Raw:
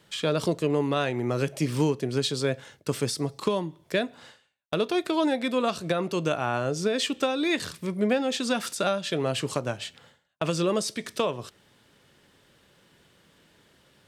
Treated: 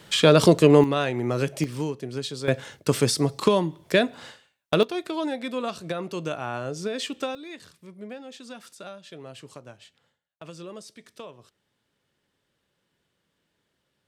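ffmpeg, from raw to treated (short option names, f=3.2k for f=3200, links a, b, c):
-af "asetnsamples=n=441:p=0,asendcmd='0.84 volume volume 1.5dB;1.64 volume volume -5dB;2.48 volume volume 6dB;4.83 volume volume -4dB;7.35 volume volume -15dB',volume=10dB"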